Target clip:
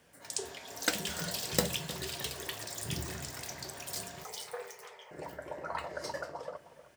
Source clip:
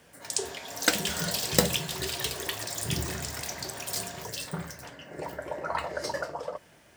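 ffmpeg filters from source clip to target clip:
-filter_complex "[0:a]asettb=1/sr,asplit=3[s0][s1][s2];[s0]atrim=end=4.244[s3];[s1]atrim=start=4.24:end=5.11,asetpts=PTS-STARTPTS,afade=t=in:d=0.004:c=qsin,afade=t=out:st=0.866:d=0.004:c=qsin,afreqshift=320[s4];[s2]atrim=start=5.106[s5];[s3][s4]acrossfade=d=0.004:c1=hsin:c2=qsin[s6];[s6][s5]acrossfade=d=0.004:c1=qsin:c2=hsin,asplit=2[s7][s8];[s8]adelay=311,lowpass=f=2000:p=1,volume=0.178,asplit=2[s9][s10];[s10]adelay=311,lowpass=f=2000:p=1,volume=0.41,asplit=2[s11][s12];[s12]adelay=311,lowpass=f=2000:p=1,volume=0.41,asplit=2[s13][s14];[s14]adelay=311,lowpass=f=2000:p=1,volume=0.41[s15];[s7][s9][s11][s13][s15]amix=inputs=5:normalize=0,volume=0.473"

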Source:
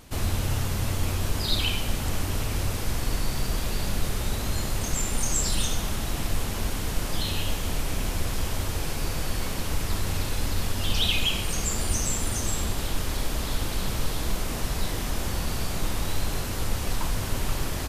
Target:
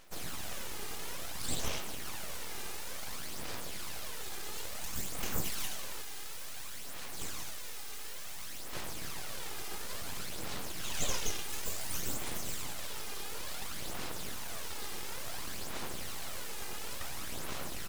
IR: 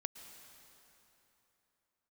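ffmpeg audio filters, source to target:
-af "asetnsamples=n=441:p=0,asendcmd='6.02 highpass f 1000;8.73 highpass f 210',highpass=f=300:p=1,aeval=exprs='abs(val(0))':c=same,aphaser=in_gain=1:out_gain=1:delay=2.5:decay=0.42:speed=0.57:type=sinusoidal,volume=0.501"

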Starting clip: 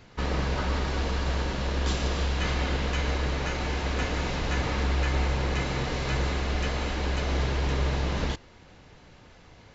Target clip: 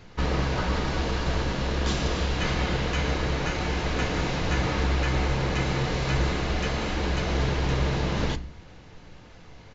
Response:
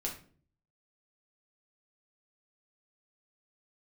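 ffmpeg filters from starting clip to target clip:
-filter_complex "[0:a]aresample=16000,aresample=44100,asplit=2[s0][s1];[s1]lowshelf=f=250:g=8.5[s2];[1:a]atrim=start_sample=2205[s3];[s2][s3]afir=irnorm=-1:irlink=0,volume=0.299[s4];[s0][s4]amix=inputs=2:normalize=0"

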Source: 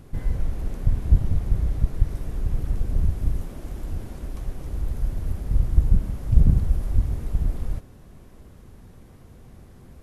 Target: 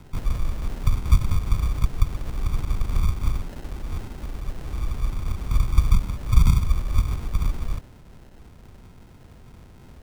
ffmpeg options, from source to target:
-filter_complex "[0:a]acrusher=samples=38:mix=1:aa=0.000001,acrossover=split=200|3000[s0][s1][s2];[s1]acompressor=threshold=0.0178:ratio=2[s3];[s0][s3][s2]amix=inputs=3:normalize=0"

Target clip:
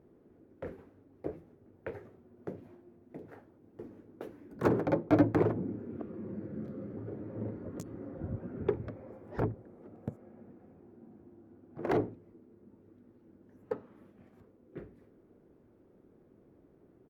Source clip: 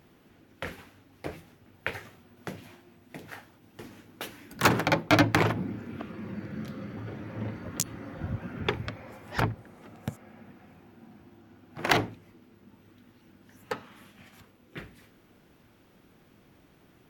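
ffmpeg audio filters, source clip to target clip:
-af "firequalizer=gain_entry='entry(170,0);entry(400,8);entry(780,-4);entry(2900,-20)':delay=0.05:min_phase=1,volume=0.562"

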